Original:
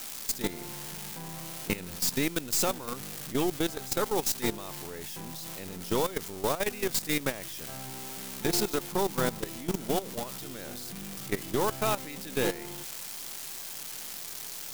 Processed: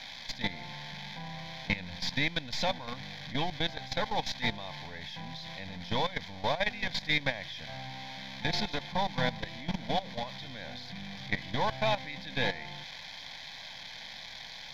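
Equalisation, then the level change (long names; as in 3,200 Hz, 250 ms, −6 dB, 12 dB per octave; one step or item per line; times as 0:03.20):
low-pass with resonance 3,100 Hz, resonance Q 3.5
phaser with its sweep stopped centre 1,900 Hz, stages 8
+2.0 dB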